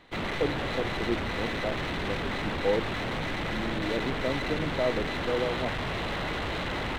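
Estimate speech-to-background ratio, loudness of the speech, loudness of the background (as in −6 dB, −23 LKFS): −2.0 dB, −33.5 LKFS, −31.5 LKFS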